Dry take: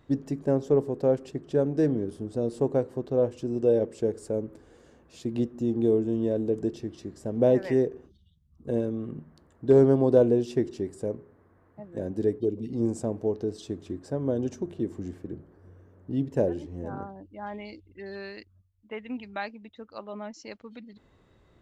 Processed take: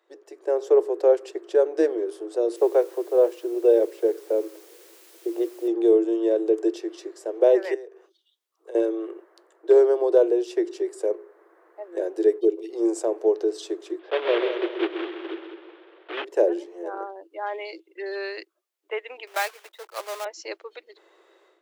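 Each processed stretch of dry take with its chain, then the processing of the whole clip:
2.56–5.68 s: steep high-pass 270 Hz 72 dB/octave + level-controlled noise filter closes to 350 Hz, open at -21.5 dBFS + word length cut 10-bit, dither triangular
7.74–8.75 s: high-pass 570 Hz + compression 2:1, threshold -51 dBFS
13.99–16.25 s: block-companded coder 3-bit + elliptic low-pass 3.4 kHz, stop band 80 dB + multi-head delay 66 ms, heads second and third, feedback 44%, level -9 dB
19.27–20.26 s: block-companded coder 3-bit + high-pass 530 Hz + tape noise reduction on one side only decoder only
whole clip: Chebyshev high-pass 330 Hz, order 8; level rider gain up to 13.5 dB; trim -5 dB

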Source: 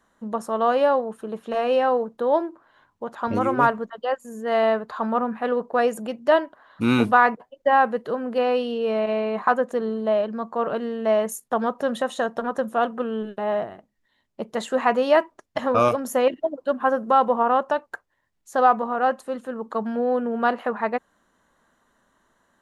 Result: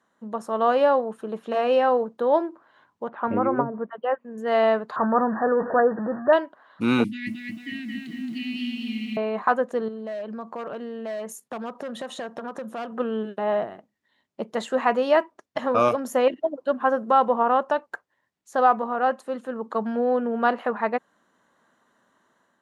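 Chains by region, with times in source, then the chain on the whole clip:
3.08–4.38 s: low-pass that closes with the level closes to 310 Hz, closed at -13.5 dBFS + low-pass 2.6 kHz 24 dB/octave
4.96–6.33 s: jump at every zero crossing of -25.5 dBFS + brick-wall FIR low-pass 1.9 kHz + doubling 15 ms -13.5 dB
7.04–9.17 s: Chebyshev band-stop 320–2000 Hz, order 5 + bit-crushed delay 222 ms, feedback 55%, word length 9-bit, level -3 dB
9.88–12.92 s: hard clipper -19 dBFS + compression 5:1, threshold -31 dBFS
whole clip: high-pass 140 Hz; treble shelf 10 kHz -9.5 dB; level rider gain up to 4.5 dB; trim -4 dB

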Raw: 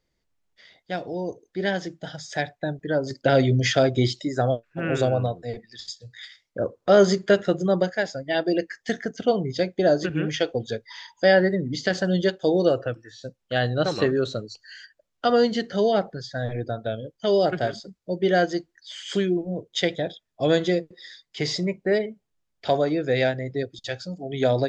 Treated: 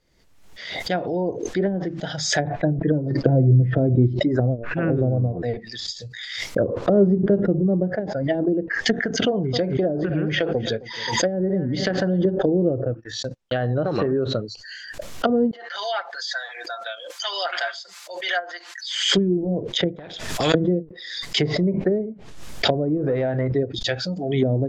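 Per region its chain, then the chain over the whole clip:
2.44–3.78 s: low-pass 1.3 kHz 6 dB/octave + comb 6.1 ms, depth 56%
9.01–12.25 s: compression 2:1, threshold -26 dBFS + feedback delay 264 ms, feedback 35%, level -19.5 dB
12.91–14.42 s: gate -47 dBFS, range -44 dB + compression 5:1, threshold -23 dBFS
15.51–18.95 s: high-pass 970 Hz 24 dB/octave + comb 5.8 ms, depth 70%
19.96–20.54 s: compression 12:1, threshold -33 dBFS + spectrum-flattening compressor 2:1
22.97–23.52 s: compression, threshold -25 dBFS + hum notches 60/120/180/240/300/360/420 Hz + waveshaping leveller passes 1
whole clip: low-pass that closes with the level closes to 310 Hz, closed at -20 dBFS; swell ahead of each attack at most 53 dB/s; trim +5.5 dB

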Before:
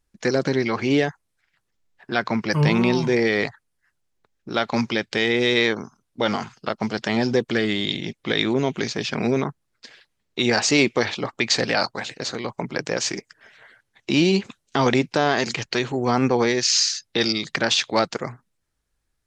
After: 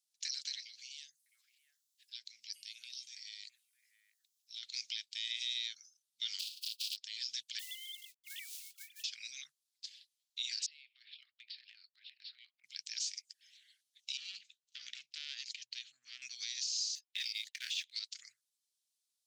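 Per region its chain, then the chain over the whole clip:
0.60–4.63 s: treble shelf 6 kHz +12 dB + compression 2:1, threshold -42 dBFS + three bands offset in time highs, lows, mids 50/660 ms, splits 460/1400 Hz
6.39–6.95 s: spectral contrast reduction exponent 0.18 + high-order bell 3.5 kHz +14 dB 1.3 oct + band-stop 2.1 kHz, Q 7.3
7.59–9.04 s: formants replaced by sine waves + low-pass 1.8 kHz 6 dB/octave + companded quantiser 6-bit
10.66–12.64 s: brick-wall FIR band-pass 640–5600 Hz + distance through air 470 m + compression 16:1, threshold -37 dBFS
14.17–16.22 s: low-pass 1.3 kHz 6 dB/octave + hum notches 60/120/180 Hz + transformer saturation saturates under 1 kHz
16.95–17.92 s: high-pass 430 Hz 6 dB/octave + resonant high shelf 3.1 kHz -11 dB, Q 1.5 + waveshaping leveller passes 1
whole clip: inverse Chebyshev high-pass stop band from 1 kHz, stop band 60 dB; compression 6:1, threshold -30 dBFS; peak limiter -25 dBFS; trim -1.5 dB

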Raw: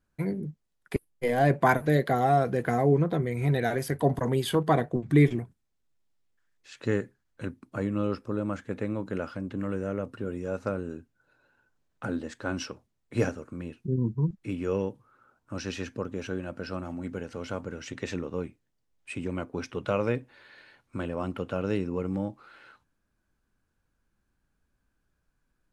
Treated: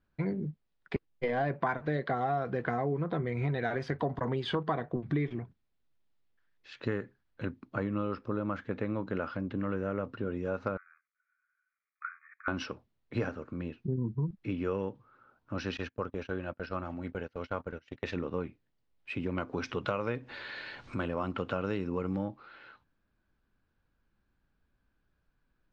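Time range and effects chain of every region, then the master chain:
10.77–12.48 s: companding laws mixed up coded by A + brick-wall FIR band-pass 1.1–2.5 kHz + peaking EQ 1.6 kHz -4 dB 0.21 oct
15.77–18.17 s: gate -39 dBFS, range -24 dB + peaking EQ 220 Hz -4.5 dB 1.5 oct
19.38–22.25 s: upward compressor, threshold -32 dBFS + peaking EQ 8.7 kHz +11.5 dB 1.3 oct
whole clip: low-pass 4.5 kHz 24 dB/octave; dynamic bell 1.2 kHz, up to +6 dB, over -44 dBFS, Q 1.3; compression 6:1, threshold -28 dBFS

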